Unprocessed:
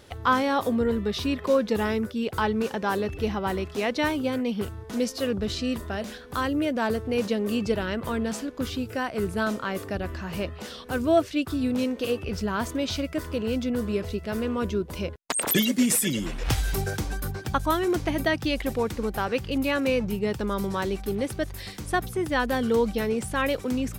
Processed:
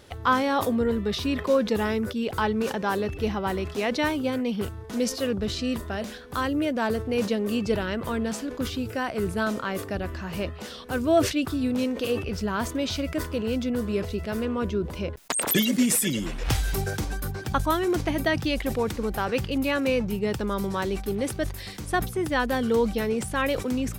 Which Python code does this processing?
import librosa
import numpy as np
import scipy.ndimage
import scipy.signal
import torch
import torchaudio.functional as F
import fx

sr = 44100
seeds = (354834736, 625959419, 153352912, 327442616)

y = fx.high_shelf(x, sr, hz=5100.0, db=-7.0, at=(14.45, 15.17))
y = fx.sustainer(y, sr, db_per_s=110.0)